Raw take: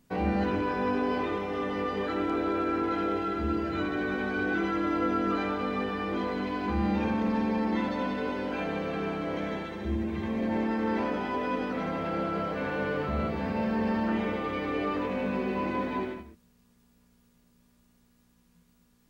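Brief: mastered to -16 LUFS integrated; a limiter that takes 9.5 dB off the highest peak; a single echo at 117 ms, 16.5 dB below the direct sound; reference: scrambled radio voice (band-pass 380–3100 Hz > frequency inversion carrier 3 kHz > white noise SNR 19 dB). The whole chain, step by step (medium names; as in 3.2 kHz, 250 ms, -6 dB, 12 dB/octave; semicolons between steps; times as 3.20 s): peak limiter -25.5 dBFS; band-pass 380–3100 Hz; delay 117 ms -16.5 dB; frequency inversion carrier 3 kHz; white noise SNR 19 dB; trim +18 dB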